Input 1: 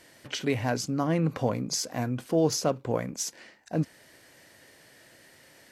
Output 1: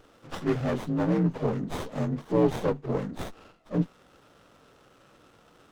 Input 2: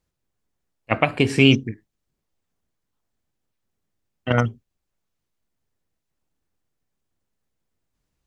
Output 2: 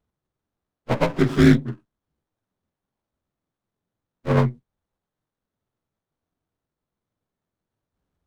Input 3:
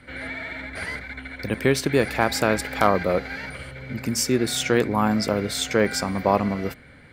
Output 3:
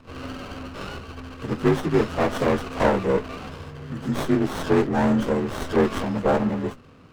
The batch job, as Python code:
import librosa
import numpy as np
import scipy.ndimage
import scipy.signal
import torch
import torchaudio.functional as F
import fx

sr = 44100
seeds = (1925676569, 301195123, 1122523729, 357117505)

y = fx.partial_stretch(x, sr, pct=84)
y = fx.running_max(y, sr, window=17)
y = y * librosa.db_to_amplitude(2.5)